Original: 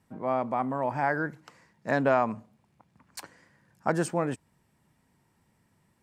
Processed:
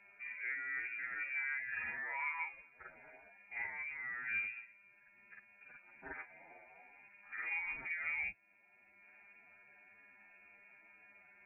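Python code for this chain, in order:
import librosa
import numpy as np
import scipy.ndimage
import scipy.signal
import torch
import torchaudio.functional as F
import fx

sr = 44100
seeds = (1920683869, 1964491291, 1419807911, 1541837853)

y = fx.highpass(x, sr, hz=180.0, slope=6)
y = fx.notch(y, sr, hz=1500.0, q=5.3)
y = fx.over_compress(y, sr, threshold_db=-33.0, ratio=-1.0)
y = fx.chorus_voices(y, sr, voices=2, hz=0.62, base_ms=25, depth_ms=1.4, mix_pct=55)
y = fx.dmg_buzz(y, sr, base_hz=400.0, harmonics=33, level_db=-72.0, tilt_db=-7, odd_only=False)
y = fx.stretch_vocoder(y, sr, factor=1.9)
y = fx.freq_invert(y, sr, carrier_hz=2600)
y = fx.band_squash(y, sr, depth_pct=40)
y = y * 10.0 ** (-4.5 / 20.0)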